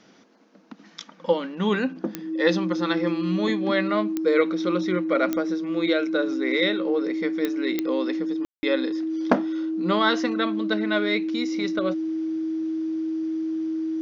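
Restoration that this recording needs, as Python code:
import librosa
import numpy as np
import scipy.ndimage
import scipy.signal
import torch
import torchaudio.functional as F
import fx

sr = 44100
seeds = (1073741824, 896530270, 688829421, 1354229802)

y = fx.fix_declick_ar(x, sr, threshold=10.0)
y = fx.notch(y, sr, hz=320.0, q=30.0)
y = fx.fix_ambience(y, sr, seeds[0], print_start_s=0.21, print_end_s=0.71, start_s=8.45, end_s=8.63)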